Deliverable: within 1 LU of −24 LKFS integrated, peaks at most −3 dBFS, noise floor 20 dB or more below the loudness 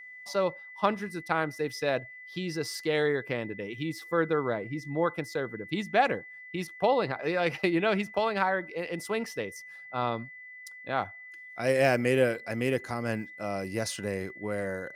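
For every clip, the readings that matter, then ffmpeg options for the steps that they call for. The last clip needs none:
interfering tone 2,000 Hz; level of the tone −44 dBFS; integrated loudness −30.0 LKFS; sample peak −10.0 dBFS; target loudness −24.0 LKFS
→ -af "bandreject=frequency=2000:width=30"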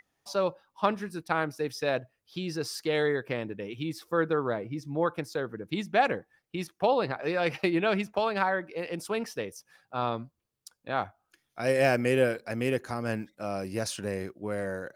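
interfering tone none found; integrated loudness −30.5 LKFS; sample peak −10.0 dBFS; target loudness −24.0 LKFS
→ -af "volume=6.5dB"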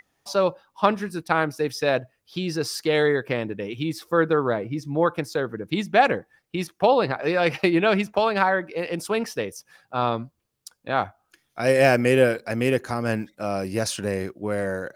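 integrated loudness −24.0 LKFS; sample peak −3.5 dBFS; background noise floor −74 dBFS

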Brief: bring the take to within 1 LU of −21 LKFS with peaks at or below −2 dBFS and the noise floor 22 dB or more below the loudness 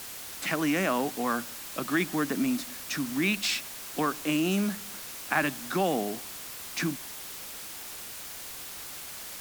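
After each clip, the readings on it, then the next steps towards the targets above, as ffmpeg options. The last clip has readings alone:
background noise floor −41 dBFS; target noise floor −53 dBFS; integrated loudness −30.5 LKFS; sample peak −11.0 dBFS; target loudness −21.0 LKFS
→ -af "afftdn=noise_reduction=12:noise_floor=-41"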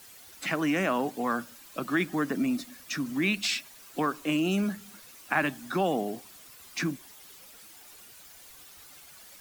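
background noise floor −51 dBFS; target noise floor −52 dBFS
→ -af "afftdn=noise_reduction=6:noise_floor=-51"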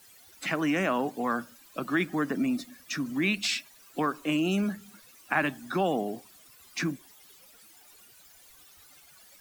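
background noise floor −56 dBFS; integrated loudness −30.0 LKFS; sample peak −11.5 dBFS; target loudness −21.0 LKFS
→ -af "volume=9dB"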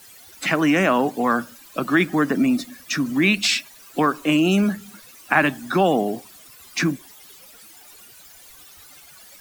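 integrated loudness −21.0 LKFS; sample peak −2.5 dBFS; background noise floor −47 dBFS

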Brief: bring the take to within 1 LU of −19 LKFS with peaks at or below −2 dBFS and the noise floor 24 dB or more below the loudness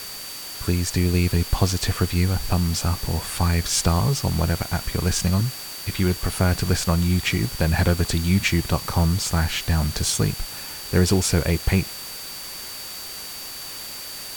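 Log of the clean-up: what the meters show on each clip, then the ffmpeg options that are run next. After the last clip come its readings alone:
interfering tone 4,600 Hz; level of the tone −37 dBFS; background noise floor −35 dBFS; target noise floor −47 dBFS; integrated loudness −23.0 LKFS; sample peak −4.0 dBFS; target loudness −19.0 LKFS
→ -af "bandreject=frequency=4600:width=30"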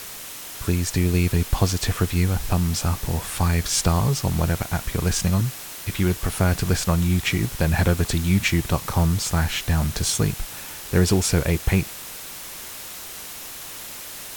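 interfering tone none found; background noise floor −37 dBFS; target noise floor −47 dBFS
→ -af "afftdn=noise_reduction=10:noise_floor=-37"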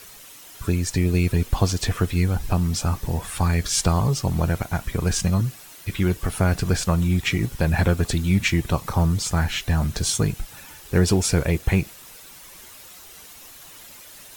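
background noise floor −44 dBFS; target noise floor −47 dBFS
→ -af "afftdn=noise_reduction=6:noise_floor=-44"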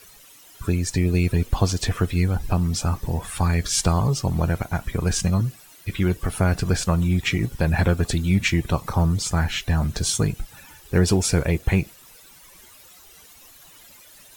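background noise floor −49 dBFS; integrated loudness −23.0 LKFS; sample peak −4.5 dBFS; target loudness −19.0 LKFS
→ -af "volume=4dB,alimiter=limit=-2dB:level=0:latency=1"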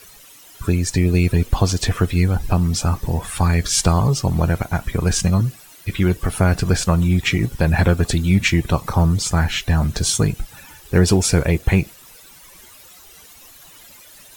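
integrated loudness −19.0 LKFS; sample peak −2.0 dBFS; background noise floor −45 dBFS

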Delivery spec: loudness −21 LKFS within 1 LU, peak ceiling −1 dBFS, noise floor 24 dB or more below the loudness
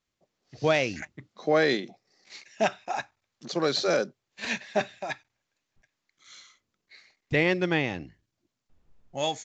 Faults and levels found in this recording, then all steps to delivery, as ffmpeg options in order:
integrated loudness −28.0 LKFS; sample peak −10.0 dBFS; target loudness −21.0 LKFS
→ -af "volume=7dB"

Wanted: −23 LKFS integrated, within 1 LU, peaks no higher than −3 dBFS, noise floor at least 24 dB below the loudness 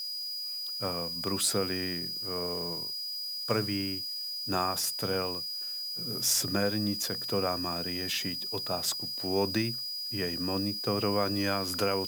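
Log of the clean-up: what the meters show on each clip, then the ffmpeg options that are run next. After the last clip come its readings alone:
interfering tone 4,900 Hz; level of the tone −34 dBFS; background noise floor −37 dBFS; target noise floor −55 dBFS; integrated loudness −30.5 LKFS; sample peak −14.0 dBFS; target loudness −23.0 LKFS
→ -af "bandreject=frequency=4900:width=30"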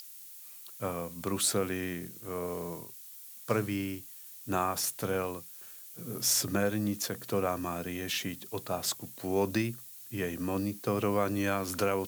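interfering tone none found; background noise floor −49 dBFS; target noise floor −57 dBFS
→ -af "afftdn=noise_reduction=8:noise_floor=-49"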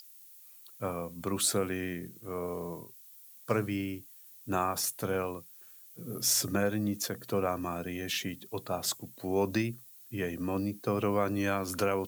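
background noise floor −54 dBFS; target noise floor −57 dBFS
→ -af "afftdn=noise_reduction=6:noise_floor=-54"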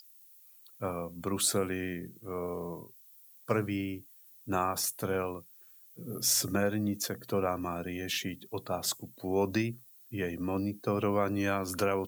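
background noise floor −57 dBFS; integrated loudness −32.5 LKFS; sample peak −15.0 dBFS; target loudness −23.0 LKFS
→ -af "volume=9.5dB"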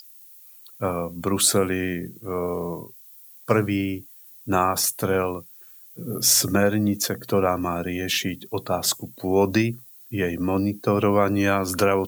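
integrated loudness −23.0 LKFS; sample peak −5.5 dBFS; background noise floor −48 dBFS

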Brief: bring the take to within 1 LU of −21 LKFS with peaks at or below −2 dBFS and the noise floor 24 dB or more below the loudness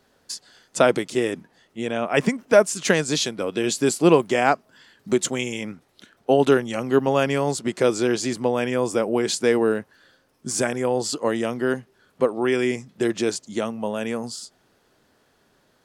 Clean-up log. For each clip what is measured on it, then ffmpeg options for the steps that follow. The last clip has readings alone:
integrated loudness −22.5 LKFS; sample peak −2.0 dBFS; target loudness −21.0 LKFS
→ -af "volume=1.5dB,alimiter=limit=-2dB:level=0:latency=1"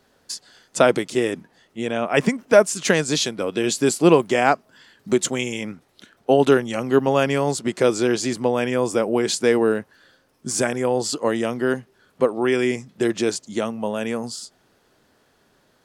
integrated loudness −21.0 LKFS; sample peak −2.0 dBFS; background noise floor −62 dBFS

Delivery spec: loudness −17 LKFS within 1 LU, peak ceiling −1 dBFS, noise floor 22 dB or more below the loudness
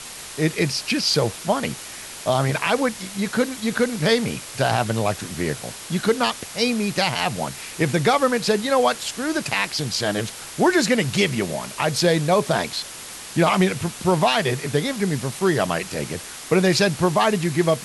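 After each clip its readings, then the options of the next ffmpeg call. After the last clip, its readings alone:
background noise floor −37 dBFS; target noise floor −44 dBFS; integrated loudness −21.5 LKFS; sample peak −7.0 dBFS; target loudness −17.0 LKFS
→ -af "afftdn=noise_reduction=7:noise_floor=-37"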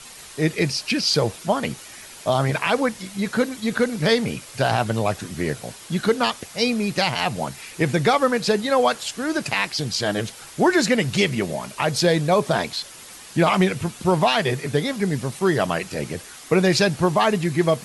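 background noise floor −42 dBFS; target noise floor −44 dBFS
→ -af "afftdn=noise_reduction=6:noise_floor=-42"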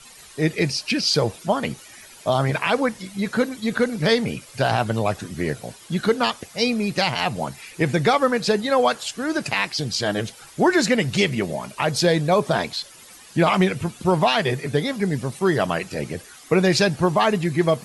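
background noise floor −46 dBFS; integrated loudness −22.0 LKFS; sample peak −7.5 dBFS; target loudness −17.0 LKFS
→ -af "volume=5dB"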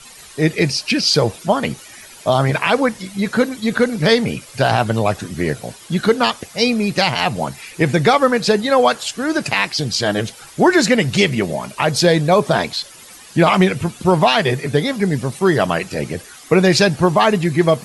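integrated loudness −17.0 LKFS; sample peak −2.5 dBFS; background noise floor −41 dBFS

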